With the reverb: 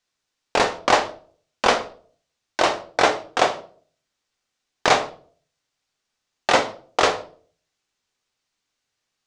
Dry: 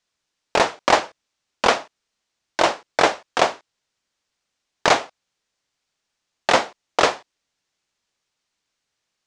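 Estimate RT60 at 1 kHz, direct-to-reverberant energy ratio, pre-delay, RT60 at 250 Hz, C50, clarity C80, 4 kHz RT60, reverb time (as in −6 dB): 0.40 s, 6.0 dB, 3 ms, 0.55 s, 13.0 dB, 18.0 dB, 0.35 s, 0.45 s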